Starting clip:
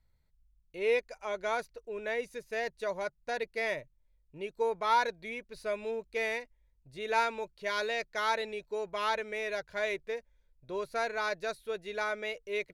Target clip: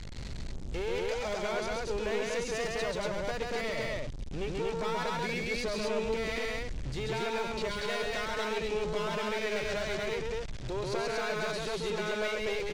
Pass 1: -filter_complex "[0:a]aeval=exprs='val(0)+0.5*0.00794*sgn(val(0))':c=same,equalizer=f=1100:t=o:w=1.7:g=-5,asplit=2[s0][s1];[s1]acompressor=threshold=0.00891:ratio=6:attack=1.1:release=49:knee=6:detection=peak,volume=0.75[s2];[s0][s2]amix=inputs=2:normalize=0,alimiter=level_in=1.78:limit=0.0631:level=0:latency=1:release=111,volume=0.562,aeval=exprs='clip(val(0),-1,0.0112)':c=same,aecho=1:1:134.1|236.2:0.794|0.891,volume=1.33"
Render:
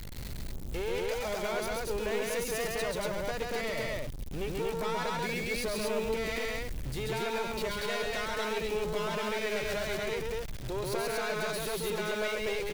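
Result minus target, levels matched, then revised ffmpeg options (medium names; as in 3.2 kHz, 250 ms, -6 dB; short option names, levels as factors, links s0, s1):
8 kHz band +3.0 dB
-filter_complex "[0:a]aeval=exprs='val(0)+0.5*0.00794*sgn(val(0))':c=same,lowpass=f=7300:w=0.5412,lowpass=f=7300:w=1.3066,equalizer=f=1100:t=o:w=1.7:g=-5,asplit=2[s0][s1];[s1]acompressor=threshold=0.00891:ratio=6:attack=1.1:release=49:knee=6:detection=peak,volume=0.75[s2];[s0][s2]amix=inputs=2:normalize=0,alimiter=level_in=1.78:limit=0.0631:level=0:latency=1:release=111,volume=0.562,aeval=exprs='clip(val(0),-1,0.0112)':c=same,aecho=1:1:134.1|236.2:0.794|0.891,volume=1.33"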